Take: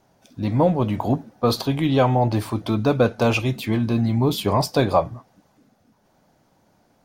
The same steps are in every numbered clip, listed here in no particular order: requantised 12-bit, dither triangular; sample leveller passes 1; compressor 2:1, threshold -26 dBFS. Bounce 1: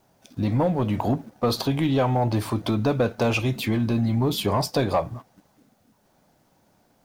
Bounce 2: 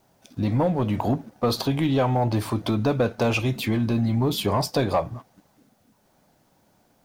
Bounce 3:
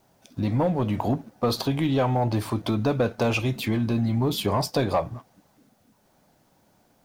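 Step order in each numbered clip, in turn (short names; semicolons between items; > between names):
compressor > requantised > sample leveller; compressor > sample leveller > requantised; sample leveller > compressor > requantised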